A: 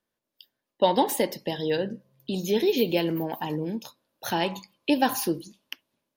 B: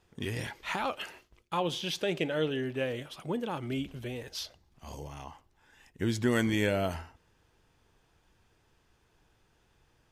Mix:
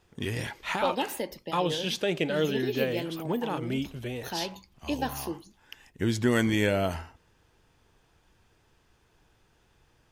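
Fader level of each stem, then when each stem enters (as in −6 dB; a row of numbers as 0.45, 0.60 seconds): −8.5, +3.0 decibels; 0.00, 0.00 seconds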